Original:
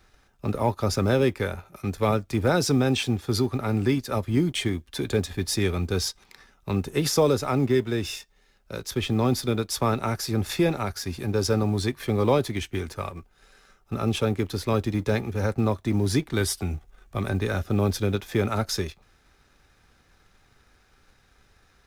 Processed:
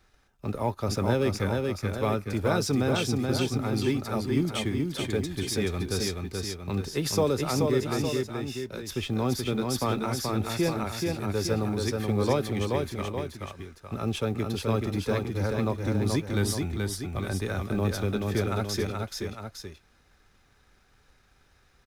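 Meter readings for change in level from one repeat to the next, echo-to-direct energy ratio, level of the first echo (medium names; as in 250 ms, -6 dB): -5.0 dB, -2.5 dB, -3.5 dB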